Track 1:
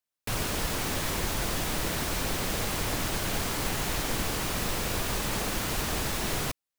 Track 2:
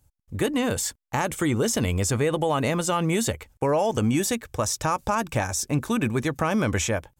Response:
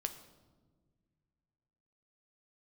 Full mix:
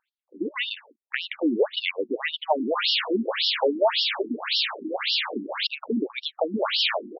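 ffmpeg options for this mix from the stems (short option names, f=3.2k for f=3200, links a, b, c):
-filter_complex "[0:a]acontrast=85,highpass=f=680:p=1,adelay=2400,volume=1.5dB,asplit=3[a][b][c];[a]atrim=end=5.67,asetpts=PTS-STARTPTS,afade=t=out:st=5.666:d=0.004:c=hsin[d];[b]atrim=start=5.67:end=6.58,asetpts=PTS-STARTPTS,volume=0[e];[c]atrim=start=6.58,asetpts=PTS-STARTPTS,afade=t=in:d=0.004:c=hsin[f];[d][e][f]concat=n=3:v=0:a=1[g];[1:a]bass=f=250:g=-12,treble=f=4k:g=-13,dynaudnorm=f=140:g=7:m=4dB,volume=3dB[h];[g][h]amix=inputs=2:normalize=0,equalizer=f=3.9k:w=1.2:g=10,afftfilt=real='re*between(b*sr/1024,260*pow(4000/260,0.5+0.5*sin(2*PI*1.8*pts/sr))/1.41,260*pow(4000/260,0.5+0.5*sin(2*PI*1.8*pts/sr))*1.41)':imag='im*between(b*sr/1024,260*pow(4000/260,0.5+0.5*sin(2*PI*1.8*pts/sr))/1.41,260*pow(4000/260,0.5+0.5*sin(2*PI*1.8*pts/sr))*1.41)':win_size=1024:overlap=0.75"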